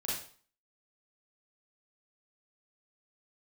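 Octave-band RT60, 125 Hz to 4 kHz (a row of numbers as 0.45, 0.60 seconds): 0.45, 0.45, 0.45, 0.45, 0.45, 0.45 seconds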